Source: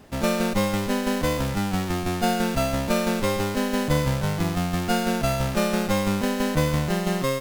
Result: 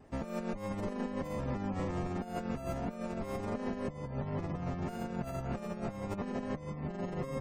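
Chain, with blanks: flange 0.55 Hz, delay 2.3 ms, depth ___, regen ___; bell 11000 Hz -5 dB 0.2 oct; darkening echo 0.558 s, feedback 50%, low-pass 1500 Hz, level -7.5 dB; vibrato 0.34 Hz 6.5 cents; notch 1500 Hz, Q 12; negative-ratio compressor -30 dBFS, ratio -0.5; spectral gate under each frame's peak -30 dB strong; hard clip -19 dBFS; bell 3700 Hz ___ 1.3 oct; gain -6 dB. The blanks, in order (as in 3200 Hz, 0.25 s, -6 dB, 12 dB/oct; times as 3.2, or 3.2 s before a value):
7.4 ms, -83%, -10.5 dB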